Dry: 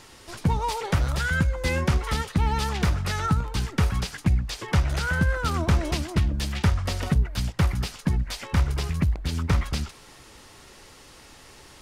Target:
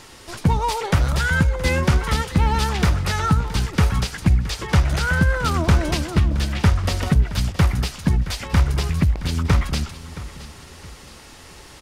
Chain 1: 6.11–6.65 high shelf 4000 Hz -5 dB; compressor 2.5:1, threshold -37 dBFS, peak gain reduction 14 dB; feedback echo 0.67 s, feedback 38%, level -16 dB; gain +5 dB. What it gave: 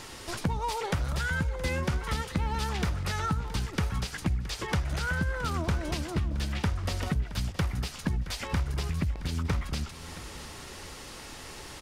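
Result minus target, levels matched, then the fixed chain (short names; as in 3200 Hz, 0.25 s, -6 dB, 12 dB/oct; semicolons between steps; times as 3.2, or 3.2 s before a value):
compressor: peak gain reduction +14 dB
6.11–6.65 high shelf 4000 Hz -5 dB; feedback echo 0.67 s, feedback 38%, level -16 dB; gain +5 dB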